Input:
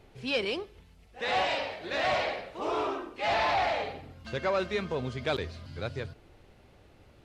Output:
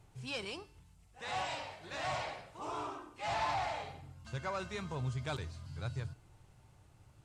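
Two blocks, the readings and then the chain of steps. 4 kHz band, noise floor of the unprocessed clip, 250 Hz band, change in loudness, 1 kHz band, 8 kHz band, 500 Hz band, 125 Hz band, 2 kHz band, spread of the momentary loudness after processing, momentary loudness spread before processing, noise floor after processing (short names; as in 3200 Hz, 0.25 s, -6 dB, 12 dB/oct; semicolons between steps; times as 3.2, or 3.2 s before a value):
-9.5 dB, -58 dBFS, -9.0 dB, -9.0 dB, -7.5 dB, -0.5 dB, -12.5 dB, 0.0 dB, -10.0 dB, 11 LU, 11 LU, -64 dBFS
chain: graphic EQ 125/250/500/1000/2000/4000/8000 Hz +10/-6/-7/+4/-4/-4/+11 dB; vocal rider 2 s; resonator 300 Hz, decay 0.54 s, harmonics odd, mix 70%; gain +2 dB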